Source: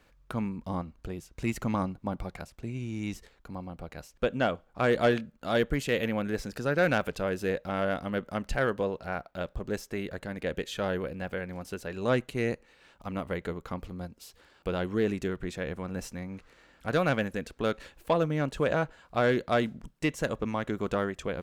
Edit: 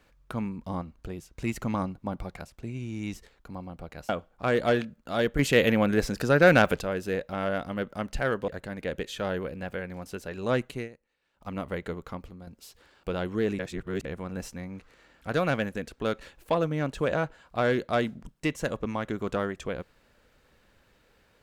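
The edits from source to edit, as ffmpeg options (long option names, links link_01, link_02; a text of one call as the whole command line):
ffmpeg -i in.wav -filter_complex "[0:a]asplit=10[link_01][link_02][link_03][link_04][link_05][link_06][link_07][link_08][link_09][link_10];[link_01]atrim=end=4.092[link_11];[link_02]atrim=start=4.448:end=5.752[link_12];[link_03]atrim=start=5.748:end=7.172,asetpts=PTS-STARTPTS,volume=7dB[link_13];[link_04]atrim=start=7.168:end=8.842[link_14];[link_05]atrim=start=10.068:end=12.48,asetpts=PTS-STARTPTS,afade=type=out:start_time=2.262:duration=0.15:silence=0.11885[link_15];[link_06]atrim=start=12.48:end=12.92,asetpts=PTS-STARTPTS,volume=-18.5dB[link_16];[link_07]atrim=start=12.92:end=14.06,asetpts=PTS-STARTPTS,afade=type=in:duration=0.15:silence=0.11885,afade=type=out:start_time=0.69:duration=0.45:silence=0.334965[link_17];[link_08]atrim=start=14.06:end=15.182,asetpts=PTS-STARTPTS,afade=type=in:duration=0.004:curve=hsin:silence=0.334965[link_18];[link_09]atrim=start=15.178:end=15.642,asetpts=PTS-STARTPTS,areverse[link_19];[link_10]atrim=start=15.638[link_20];[link_11][link_12]acrossfade=duration=0.004:curve1=hsin:curve2=hsin[link_21];[link_21][link_13]acrossfade=duration=0.004:curve1=hsin:curve2=hsin[link_22];[link_22][link_14]acrossfade=duration=0.004:curve1=hsin:curve2=hsin[link_23];[link_15][link_16][link_17][link_18]concat=n=4:v=0:a=1[link_24];[link_23][link_24]acrossfade=duration=0.004:curve1=hsin:curve2=hsin[link_25];[link_25][link_19]acrossfade=duration=0.004:curve1=hsin:curve2=hsin[link_26];[link_26][link_20]acrossfade=duration=0.004:curve1=hsin:curve2=hsin" out.wav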